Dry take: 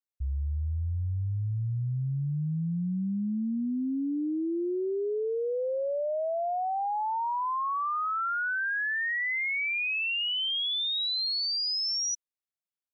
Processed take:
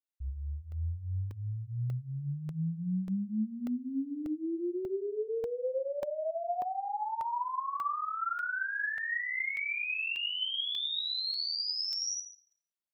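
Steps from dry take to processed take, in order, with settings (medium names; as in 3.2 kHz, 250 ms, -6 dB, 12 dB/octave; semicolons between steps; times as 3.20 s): Schroeder reverb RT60 0.51 s, combs from 33 ms, DRR 0 dB; crackling interface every 0.59 s, samples 64, zero, from 0.72 s; trim -7.5 dB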